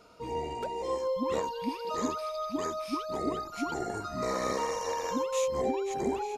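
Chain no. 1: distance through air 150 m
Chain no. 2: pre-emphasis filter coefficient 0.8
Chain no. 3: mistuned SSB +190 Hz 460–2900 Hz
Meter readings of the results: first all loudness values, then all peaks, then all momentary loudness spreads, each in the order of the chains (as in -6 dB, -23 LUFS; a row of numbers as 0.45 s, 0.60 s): -33.5 LUFS, -44.0 LUFS, -34.5 LUFS; -18.0 dBFS, -26.5 dBFS, -20.0 dBFS; 5 LU, 6 LU, 5 LU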